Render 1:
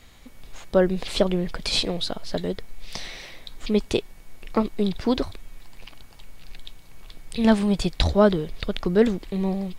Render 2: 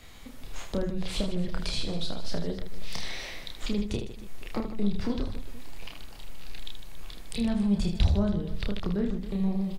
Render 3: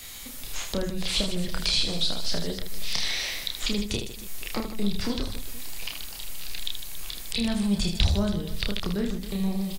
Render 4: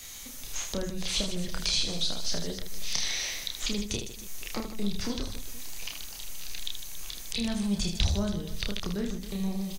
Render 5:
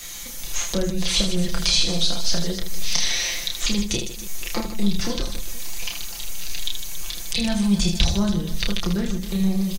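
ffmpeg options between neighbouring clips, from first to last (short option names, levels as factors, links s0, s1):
-filter_complex "[0:a]acrossover=split=170[s0][s1];[s1]acompressor=threshold=0.0178:ratio=6[s2];[s0][s2]amix=inputs=2:normalize=0,asplit=2[s3][s4];[s4]aecho=0:1:30|78|154.8|277.7|474.3:0.631|0.398|0.251|0.158|0.1[s5];[s3][s5]amix=inputs=2:normalize=0"
-filter_complex "[0:a]acrossover=split=5300[s0][s1];[s1]acompressor=threshold=0.00178:ratio=4:attack=1:release=60[s2];[s0][s2]amix=inputs=2:normalize=0,crystalizer=i=6.5:c=0"
-af "equalizer=f=6200:t=o:w=0.23:g=10.5,volume=0.631"
-af "aecho=1:1:5.8:0.65,volume=2.11"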